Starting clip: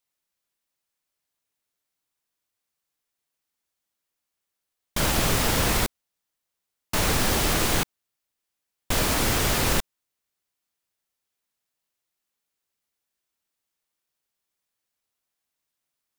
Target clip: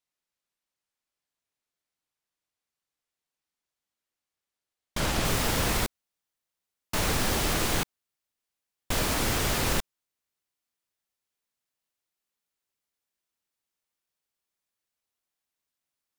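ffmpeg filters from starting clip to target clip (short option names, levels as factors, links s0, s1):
-af "asetnsamples=n=441:p=0,asendcmd='5.25 highshelf g -2',highshelf=f=11000:g=-10.5,volume=0.668"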